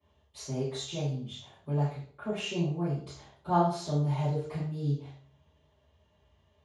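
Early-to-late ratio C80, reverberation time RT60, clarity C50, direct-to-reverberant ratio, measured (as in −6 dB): 6.0 dB, 0.50 s, 2.0 dB, −17.5 dB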